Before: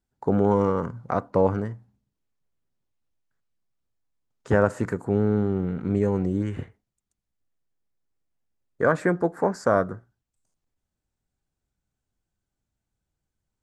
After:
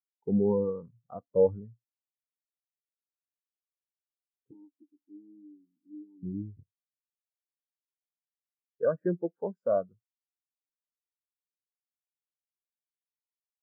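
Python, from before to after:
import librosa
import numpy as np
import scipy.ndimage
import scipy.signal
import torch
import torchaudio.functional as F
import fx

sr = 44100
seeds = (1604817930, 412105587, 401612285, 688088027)

y = fx.vowel_filter(x, sr, vowel='u', at=(4.51, 6.23))
y = fx.spectral_expand(y, sr, expansion=2.5)
y = F.gain(torch.from_numpy(y), -6.0).numpy()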